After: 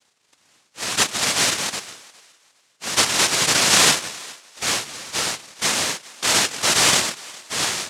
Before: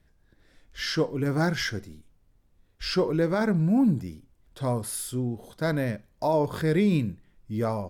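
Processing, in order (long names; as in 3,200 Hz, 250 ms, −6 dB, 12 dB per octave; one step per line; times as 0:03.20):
cochlear-implant simulation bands 1
feedback echo with a high-pass in the loop 409 ms, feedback 25%, high-pass 380 Hz, level −21.5 dB
level +5 dB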